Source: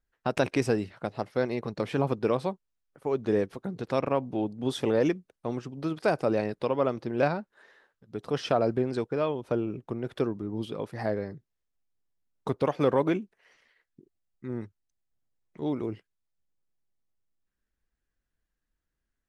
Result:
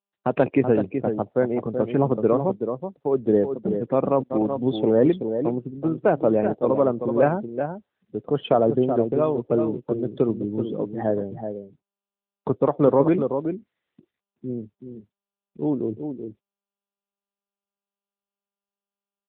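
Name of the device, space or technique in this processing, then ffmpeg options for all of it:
mobile call with aggressive noise cancelling: -filter_complex "[0:a]lowpass=7500,equalizer=f=2000:t=o:w=2.2:g=-4.5,aecho=1:1:378:0.447,asettb=1/sr,asplit=3[s0][s1][s2];[s0]atrim=end=4.234[s3];[s1]atrim=start=4.23:end=4.83,asetpts=PTS-STARTPTS,afade=t=in:d=0.004:c=qsin,afade=t=out:st=0.596:d=0.004:c=qsin,agate=range=0.0316:threshold=0.0178:ratio=16:detection=peak[s4];[s2]atrim=start=4.826[s5];[s3][s4]acrossfade=d=0.004:c1=hsin:c2=qsin[s6];[s6][s5]acrossfade=d=0.004:c1=qsin:c2=hsin,highpass=120,afftdn=nr=28:nf=-40,volume=2.37" -ar 8000 -c:a libopencore_amrnb -b:a 10200

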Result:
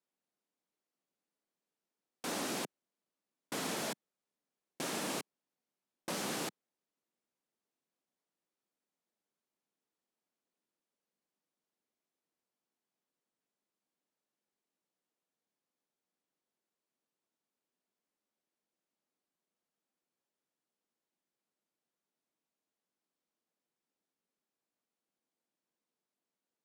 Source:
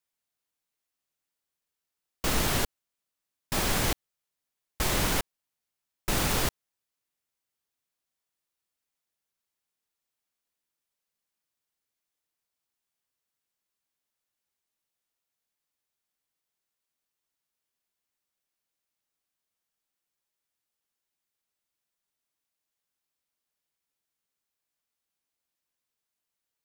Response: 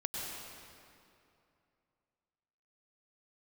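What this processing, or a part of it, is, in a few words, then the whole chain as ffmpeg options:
overflowing digital effects unit: -af "aeval=exprs='(mod(20*val(0)+1,2)-1)/20':c=same,highpass=f=180:w=0.5412,highpass=f=180:w=1.3066,lowpass=10000,tiltshelf=f=870:g=8"

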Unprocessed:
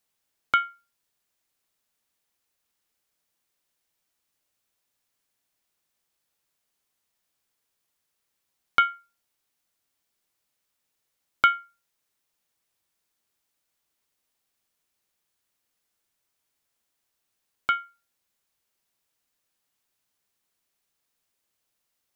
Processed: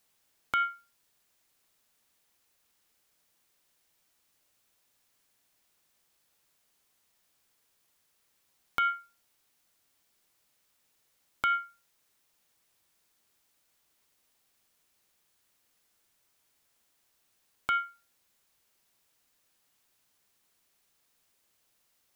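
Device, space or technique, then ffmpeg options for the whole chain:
de-esser from a sidechain: -filter_complex "[0:a]asplit=2[s0][s1];[s1]highpass=f=4400:p=1,apad=whole_len=976868[s2];[s0][s2]sidechaincompress=threshold=0.0126:ratio=8:attack=1.4:release=27,volume=2"

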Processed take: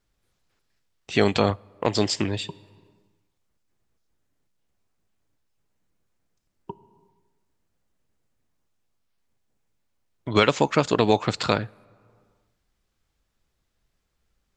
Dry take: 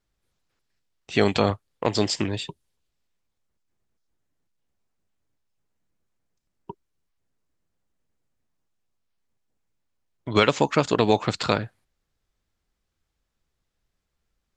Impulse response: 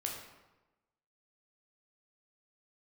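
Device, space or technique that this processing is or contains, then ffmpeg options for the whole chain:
ducked reverb: -filter_complex "[0:a]asplit=3[s0][s1][s2];[1:a]atrim=start_sample=2205[s3];[s1][s3]afir=irnorm=-1:irlink=0[s4];[s2]apad=whole_len=642454[s5];[s4][s5]sidechaincompress=threshold=0.0126:ratio=8:attack=7.2:release=423,volume=0.596[s6];[s0][s6]amix=inputs=2:normalize=0"

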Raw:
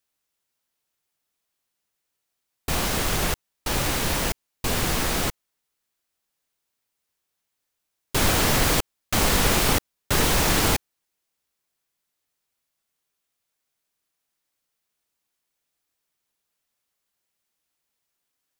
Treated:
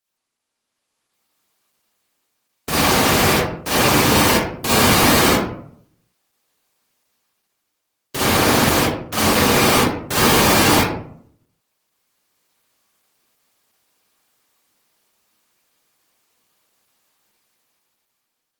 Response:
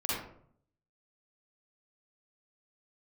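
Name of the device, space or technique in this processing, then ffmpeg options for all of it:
far-field microphone of a smart speaker: -filter_complex "[1:a]atrim=start_sample=2205[s0];[0:a][s0]afir=irnorm=-1:irlink=0,highpass=130,dynaudnorm=f=340:g=7:m=4.47,volume=0.891" -ar 48000 -c:a libopus -b:a 16k

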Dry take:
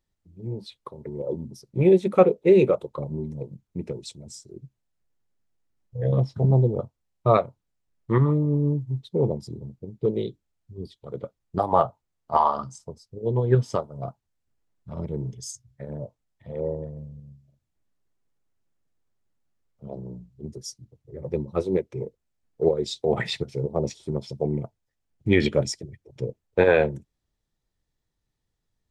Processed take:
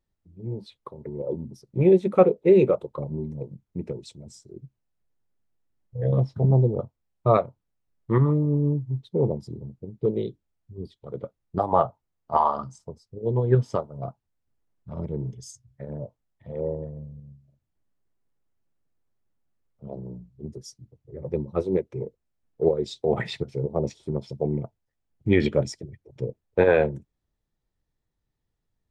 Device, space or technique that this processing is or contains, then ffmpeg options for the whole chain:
behind a face mask: -af "highshelf=f=2600:g=-8"

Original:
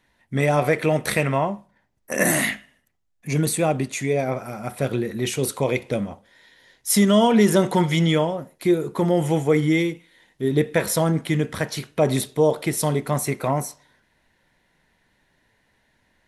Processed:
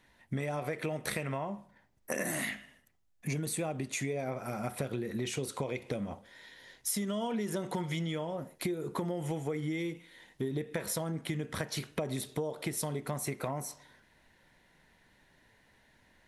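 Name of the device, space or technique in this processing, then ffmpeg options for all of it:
serial compression, leveller first: -filter_complex "[0:a]acompressor=threshold=0.0794:ratio=2,acompressor=threshold=0.0251:ratio=6,asettb=1/sr,asplit=3[s0][s1][s2];[s0]atrim=end=5.174[s3];[s1]atrim=start=5.17:end=5.78,asetpts=PTS-STARTPTS,afade=t=in:d=0.004:c=qsin,afade=t=out:st=0.606:d=0.004:c=qsin,lowpass=9500[s4];[s2]atrim=start=5.776[s5];[s3][s4]acrossfade=d=0.004:c1=hsin:c2=qsin[s6];[s6][s5]acrossfade=d=0.004:c1=qsin:c2=hsin"

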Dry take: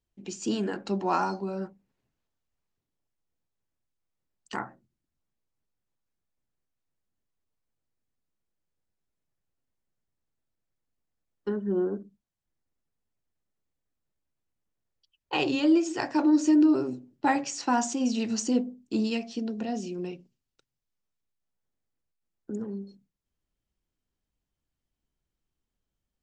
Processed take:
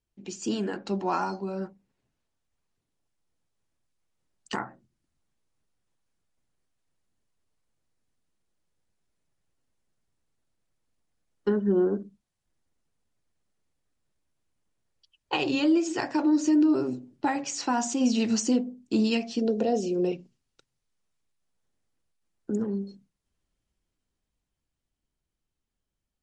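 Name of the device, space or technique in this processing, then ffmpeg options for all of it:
low-bitrate web radio: -filter_complex "[0:a]asettb=1/sr,asplit=3[s0][s1][s2];[s0]atrim=end=19.414[s3];[s1]atrim=start=19.41:end=20.12,asetpts=PTS-STARTPTS,afade=t=in:d=0.004:c=qsin,afade=t=out:st=0.706:d=0.004:c=qsin,equalizer=f=250:t=o:w=1:g=-3,equalizer=f=500:t=o:w=1:g=12,equalizer=f=1000:t=o:w=1:g=-4,equalizer=f=2000:t=o:w=1:g=-5[s4];[s2]atrim=start=20.116[s5];[s3][s4]acrossfade=d=0.004:c1=hsin:c2=qsin[s6];[s6][s5]acrossfade=d=0.004:c1=qsin:c2=hsin,dynaudnorm=f=250:g=21:m=2.11,alimiter=limit=0.178:level=0:latency=1:release=459" -ar 48000 -c:a libmp3lame -b:a 48k

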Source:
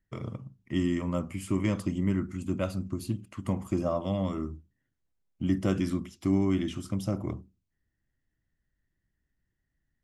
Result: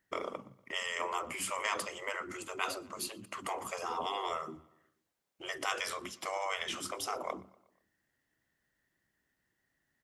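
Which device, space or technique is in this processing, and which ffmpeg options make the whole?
filter by subtraction: -filter_complex "[0:a]afftfilt=real='re*lt(hypot(re,im),0.0562)':imag='im*lt(hypot(re,im),0.0562)':win_size=1024:overlap=0.75,asplit=2[s0][s1];[s1]lowpass=710,volume=-1[s2];[s0][s2]amix=inputs=2:normalize=0,asplit=2[s3][s4];[s4]adelay=120,lowpass=f=4400:p=1,volume=0.075,asplit=2[s5][s6];[s6]adelay=120,lowpass=f=4400:p=1,volume=0.53,asplit=2[s7][s8];[s8]adelay=120,lowpass=f=4400:p=1,volume=0.53,asplit=2[s9][s10];[s10]adelay=120,lowpass=f=4400:p=1,volume=0.53[s11];[s3][s5][s7][s9][s11]amix=inputs=5:normalize=0,volume=2.24"

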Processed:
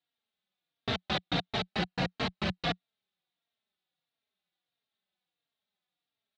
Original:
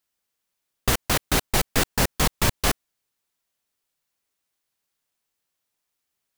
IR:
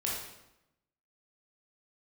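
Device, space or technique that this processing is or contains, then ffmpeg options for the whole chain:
barber-pole flanger into a guitar amplifier: -filter_complex "[0:a]asettb=1/sr,asplit=3[s0][s1][s2];[s0]atrim=end=1.704[s3];[s1]atrim=start=1.7:end=2.65,asetpts=PTS-STARTPTS,afade=t=in:d=0.004:c=qsin,afade=t=out:st=0.946:d=0.004:c=qsin,bandreject=f=3500:w=7.2[s4];[s2]atrim=start=2.646[s5];[s3][s4]acrossfade=d=0.004:c1=hsin:c2=qsin[s6];[s6][s5]acrossfade=d=0.004:c1=qsin:c2=hsin,asplit=2[s7][s8];[s8]adelay=3.7,afreqshift=-1.5[s9];[s7][s9]amix=inputs=2:normalize=1,asoftclip=type=tanh:threshold=0.0944,highpass=100,equalizer=f=180:t=q:w=4:g=9,equalizer=f=730:t=q:w=4:g=6,equalizer=f=1000:t=q:w=4:g=-4,equalizer=f=3700:t=q:w=4:g=10,lowpass=f=4000:w=0.5412,lowpass=f=4000:w=1.3066,volume=0.708"

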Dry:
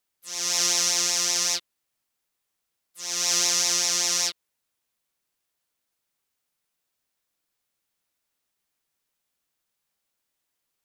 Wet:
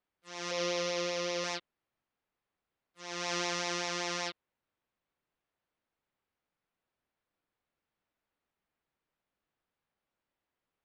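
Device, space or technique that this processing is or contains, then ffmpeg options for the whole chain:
phone in a pocket: -filter_complex "[0:a]lowpass=3300,highshelf=f=2200:g=-10,asettb=1/sr,asplit=3[s0][s1][s2];[s0]atrim=end=0.514[s3];[s1]atrim=start=0.51:end=1.44,asetpts=PTS-STARTPTS,afade=t=in:d=0.004:c=qsin,afade=t=out:st=0.926:d=0.004:c=qsin,equalizer=f=500:t=o:w=0.33:g=11,equalizer=f=800:t=o:w=0.33:g=-11,equalizer=f=1600:t=o:w=0.33:g=-8,equalizer=f=8000:t=o:w=0.33:g=-11[s4];[s2]atrim=start=1.436[s5];[s3][s4]acrossfade=d=0.004:c1=hsin:c2=qsin[s6];[s6][s5]acrossfade=d=0.004:c1=qsin:c2=hsin,volume=1.19"

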